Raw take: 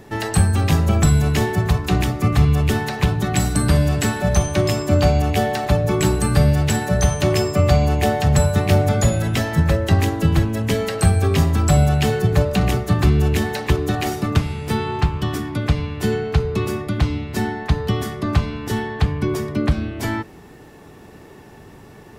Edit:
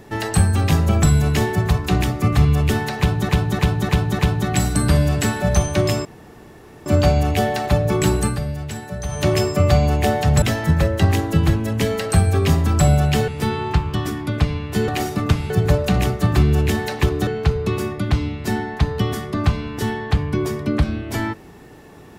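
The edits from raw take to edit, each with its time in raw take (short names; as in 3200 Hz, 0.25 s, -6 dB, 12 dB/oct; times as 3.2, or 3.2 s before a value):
2.99–3.29 loop, 5 plays
4.85 insert room tone 0.81 s
6.24–7.21 dip -10.5 dB, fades 0.14 s
8.41–9.31 cut
12.17–13.94 swap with 14.56–16.16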